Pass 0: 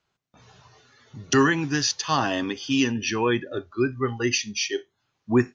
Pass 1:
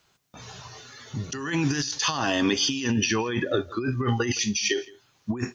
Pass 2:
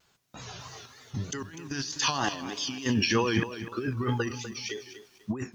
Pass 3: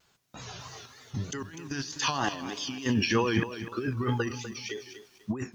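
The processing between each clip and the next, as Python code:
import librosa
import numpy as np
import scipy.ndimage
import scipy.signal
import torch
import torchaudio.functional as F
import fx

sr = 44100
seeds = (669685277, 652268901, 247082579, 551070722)

y1 = fx.high_shelf(x, sr, hz=4800.0, db=10.0)
y1 = fx.over_compress(y1, sr, threshold_db=-29.0, ratio=-1.0)
y1 = y1 + 10.0 ** (-22.5 / 20.0) * np.pad(y1, (int(166 * sr / 1000.0), 0))[:len(y1)]
y1 = y1 * librosa.db_to_amplitude(3.0)
y2 = fx.tremolo_random(y1, sr, seeds[0], hz=3.5, depth_pct=95)
y2 = fx.vibrato(y2, sr, rate_hz=3.2, depth_cents=100.0)
y2 = fx.echo_crushed(y2, sr, ms=248, feedback_pct=35, bits=9, wet_db=-12.0)
y2 = y2 * librosa.db_to_amplitude(1.0)
y3 = fx.dynamic_eq(y2, sr, hz=5200.0, q=0.96, threshold_db=-42.0, ratio=4.0, max_db=-4)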